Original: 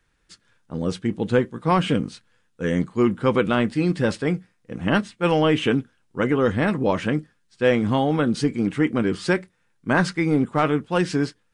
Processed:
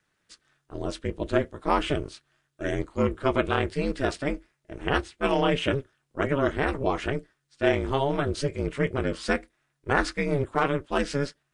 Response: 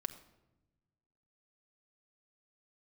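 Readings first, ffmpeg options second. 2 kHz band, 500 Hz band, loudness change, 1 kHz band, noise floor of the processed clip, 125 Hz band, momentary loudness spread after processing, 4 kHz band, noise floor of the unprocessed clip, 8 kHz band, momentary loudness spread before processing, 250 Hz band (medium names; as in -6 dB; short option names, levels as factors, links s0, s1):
-3.0 dB, -4.0 dB, -5.0 dB, -2.5 dB, -76 dBFS, -6.0 dB, 10 LU, -3.0 dB, -66 dBFS, -3.0 dB, 8 LU, -8.5 dB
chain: -af "lowshelf=f=150:g=-11.5,aeval=exprs='val(0)*sin(2*PI*140*n/s)':c=same"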